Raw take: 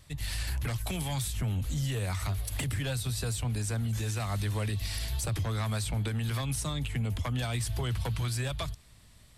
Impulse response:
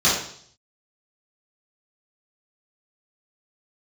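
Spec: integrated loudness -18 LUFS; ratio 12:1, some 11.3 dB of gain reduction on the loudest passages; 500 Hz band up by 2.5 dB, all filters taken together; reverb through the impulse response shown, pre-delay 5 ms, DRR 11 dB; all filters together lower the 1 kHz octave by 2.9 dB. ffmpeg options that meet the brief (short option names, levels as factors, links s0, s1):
-filter_complex "[0:a]equalizer=f=500:t=o:g=4.5,equalizer=f=1000:t=o:g=-5.5,acompressor=threshold=0.0112:ratio=12,asplit=2[s0][s1];[1:a]atrim=start_sample=2205,adelay=5[s2];[s1][s2]afir=irnorm=-1:irlink=0,volume=0.0316[s3];[s0][s3]amix=inputs=2:normalize=0,volume=15.8"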